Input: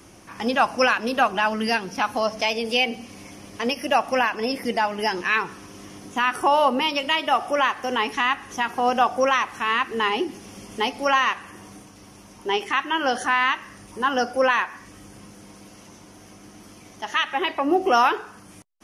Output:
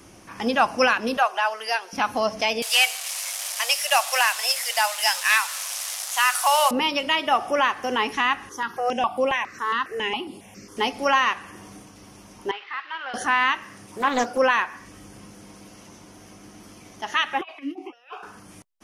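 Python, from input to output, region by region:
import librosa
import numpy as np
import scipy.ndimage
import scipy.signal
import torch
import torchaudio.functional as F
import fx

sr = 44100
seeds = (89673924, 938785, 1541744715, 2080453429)

y = fx.chain(x, sr, fx.highpass(hz=560.0, slope=24),
    fx.peak_eq(hz=2400.0, db=-2.5, octaves=1.6), at=(1.17, 1.93))
y = fx.chain(y, sr, fx.delta_mod(bps=64000, step_db=-30.5),
    fx.steep_highpass(hz=540.0, slope=72),
    fx.tilt_eq(slope=4.0), at=(2.62, 6.71))
y = fx.chain(y, sr, fx.highpass(hz=130.0, slope=6),
    fx.phaser_held(hz=7.3, low_hz=690.0, high_hz=6000.0), at=(8.49, 10.77))
y = fx.chain(y, sr, fx.delta_mod(bps=32000, step_db=-30.0),
    fx.highpass(hz=1400.0, slope=12),
    fx.air_absorb(metres=420.0), at=(12.51, 13.14))
y = fx.chain(y, sr, fx.highpass(hz=92.0, slope=24),
    fx.high_shelf(hz=12000.0, db=5.5),
    fx.doppler_dist(depth_ms=0.37), at=(13.64, 14.38))
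y = fx.chain(y, sr, fx.tilt_eq(slope=4.5),
    fx.over_compress(threshold_db=-25.0, ratio=-0.5),
    fx.vowel_held(hz=5.8), at=(17.41, 18.23))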